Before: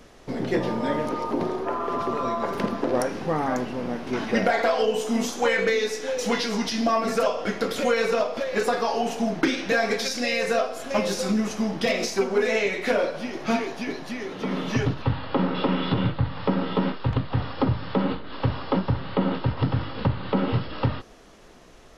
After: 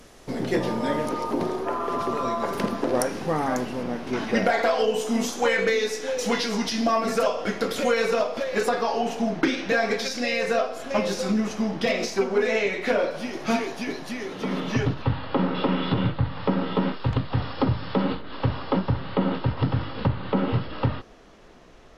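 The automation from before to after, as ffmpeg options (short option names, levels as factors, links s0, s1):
-af "asetnsamples=n=441:p=0,asendcmd='3.83 equalizer g 1.5;8.69 equalizer g -5.5;13.11 equalizer g 5;14.6 equalizer g -3;16.92 equalizer g 8;18.21 equalizer g -2;20.08 equalizer g -9.5',equalizer=f=11000:t=o:w=1.5:g=8"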